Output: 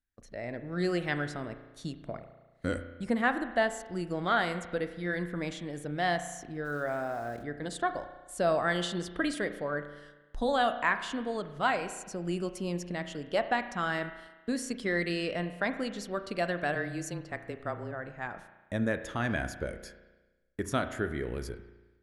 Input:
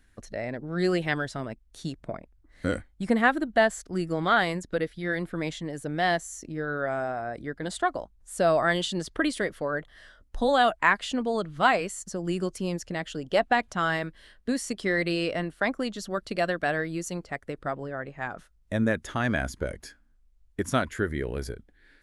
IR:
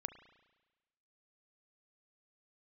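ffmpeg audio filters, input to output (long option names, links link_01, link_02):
-filter_complex "[0:a]agate=range=-17dB:threshold=-50dB:ratio=16:detection=peak,dynaudnorm=framelen=100:gausssize=7:maxgain=7dB,asplit=3[link_01][link_02][link_03];[link_01]afade=type=out:start_time=6.64:duration=0.02[link_04];[link_02]aeval=exprs='val(0)*gte(abs(val(0)),0.0112)':channel_layout=same,afade=type=in:start_time=6.64:duration=0.02,afade=type=out:start_time=7.42:duration=0.02[link_05];[link_03]afade=type=in:start_time=7.42:duration=0.02[link_06];[link_04][link_05][link_06]amix=inputs=3:normalize=0,asplit=3[link_07][link_08][link_09];[link_07]afade=type=out:start_time=16.74:duration=0.02[link_10];[link_08]afreqshift=-22,afade=type=in:start_time=16.74:duration=0.02,afade=type=out:start_time=17.91:duration=0.02[link_11];[link_09]afade=type=in:start_time=17.91:duration=0.02[link_12];[link_10][link_11][link_12]amix=inputs=3:normalize=0[link_13];[1:a]atrim=start_sample=2205[link_14];[link_13][link_14]afir=irnorm=-1:irlink=0,volume=-8dB"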